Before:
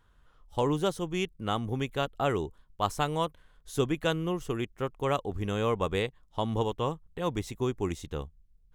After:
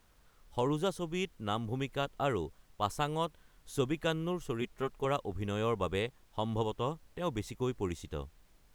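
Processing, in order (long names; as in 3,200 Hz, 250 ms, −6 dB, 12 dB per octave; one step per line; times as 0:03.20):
0:04.61–0:05.05: comb filter 4.8 ms
background noise pink −65 dBFS
level −4 dB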